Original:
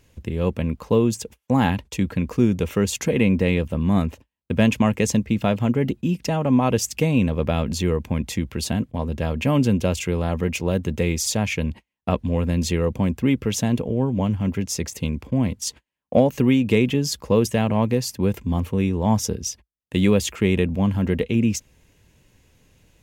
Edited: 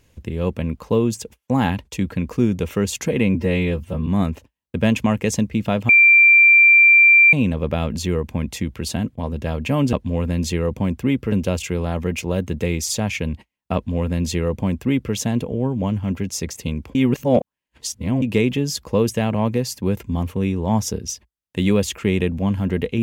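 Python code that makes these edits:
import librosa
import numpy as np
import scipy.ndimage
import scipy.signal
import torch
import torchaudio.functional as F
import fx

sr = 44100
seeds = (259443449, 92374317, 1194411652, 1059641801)

y = fx.edit(x, sr, fx.stretch_span(start_s=3.35, length_s=0.48, factor=1.5),
    fx.bleep(start_s=5.65, length_s=1.44, hz=2360.0, db=-7.5),
    fx.duplicate(start_s=12.12, length_s=1.39, to_s=9.69),
    fx.reverse_span(start_s=15.32, length_s=1.27), tone=tone)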